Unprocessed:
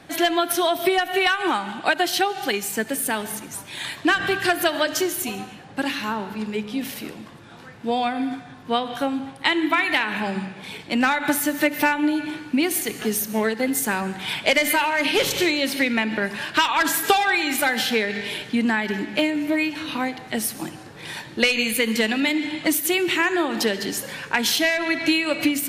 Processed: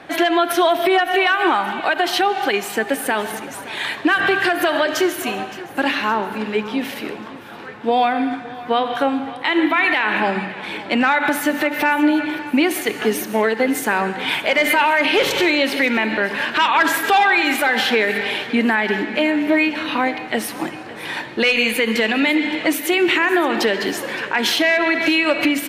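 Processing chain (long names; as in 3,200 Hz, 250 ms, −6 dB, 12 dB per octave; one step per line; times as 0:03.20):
bass and treble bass −11 dB, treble −13 dB
brickwall limiter −16.5 dBFS, peak gain reduction 11 dB
repeating echo 567 ms, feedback 52%, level −17.5 dB
level +9 dB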